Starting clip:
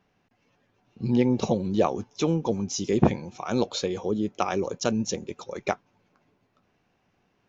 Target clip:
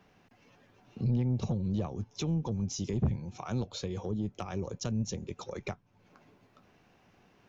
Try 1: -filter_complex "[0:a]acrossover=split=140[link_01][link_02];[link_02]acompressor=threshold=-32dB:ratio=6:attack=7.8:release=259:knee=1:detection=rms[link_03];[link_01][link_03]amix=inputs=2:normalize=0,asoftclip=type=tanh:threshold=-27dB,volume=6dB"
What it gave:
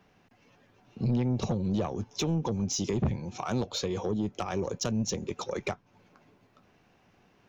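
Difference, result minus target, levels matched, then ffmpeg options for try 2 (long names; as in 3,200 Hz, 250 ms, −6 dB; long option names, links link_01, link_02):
downward compressor: peak gain reduction −8 dB
-filter_complex "[0:a]acrossover=split=140[link_01][link_02];[link_02]acompressor=threshold=-41.5dB:ratio=6:attack=7.8:release=259:knee=1:detection=rms[link_03];[link_01][link_03]amix=inputs=2:normalize=0,asoftclip=type=tanh:threshold=-27dB,volume=6dB"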